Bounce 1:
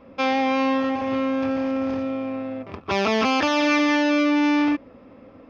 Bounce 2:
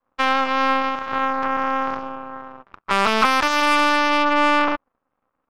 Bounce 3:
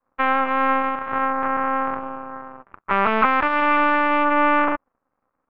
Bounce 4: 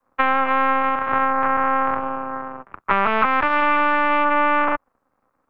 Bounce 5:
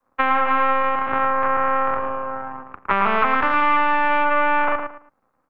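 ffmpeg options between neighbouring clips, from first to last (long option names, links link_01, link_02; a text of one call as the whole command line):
ffmpeg -i in.wav -af "aeval=exprs='max(val(0),0)':channel_layout=same,aeval=exprs='0.398*(cos(1*acos(clip(val(0)/0.398,-1,1)))-cos(1*PI/2))+0.0447*(cos(3*acos(clip(val(0)/0.398,-1,1)))-cos(3*PI/2))+0.00355*(cos(5*acos(clip(val(0)/0.398,-1,1)))-cos(5*PI/2))+0.0224*(cos(6*acos(clip(val(0)/0.398,-1,1)))-cos(6*PI/2))+0.0398*(cos(7*acos(clip(val(0)/0.398,-1,1)))-cos(7*PI/2))':channel_layout=same,equalizer=frequency=1200:width_type=o:width=1.2:gain=13,volume=1.5dB" out.wav
ffmpeg -i in.wav -af "lowpass=frequency=2300:width=0.5412,lowpass=frequency=2300:width=1.3066" out.wav
ffmpeg -i in.wav -filter_complex "[0:a]acrossover=split=150|470[link_01][link_02][link_03];[link_01]acompressor=threshold=-34dB:ratio=4[link_04];[link_02]acompressor=threshold=-39dB:ratio=4[link_05];[link_03]acompressor=threshold=-21dB:ratio=4[link_06];[link_04][link_05][link_06]amix=inputs=3:normalize=0,volume=6dB" out.wav
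ffmpeg -i in.wav -filter_complex "[0:a]asplit=2[link_01][link_02];[link_02]adelay=111,lowpass=frequency=3000:poles=1,volume=-6dB,asplit=2[link_03][link_04];[link_04]adelay=111,lowpass=frequency=3000:poles=1,volume=0.26,asplit=2[link_05][link_06];[link_06]adelay=111,lowpass=frequency=3000:poles=1,volume=0.26[link_07];[link_01][link_03][link_05][link_07]amix=inputs=4:normalize=0,volume=-1dB" out.wav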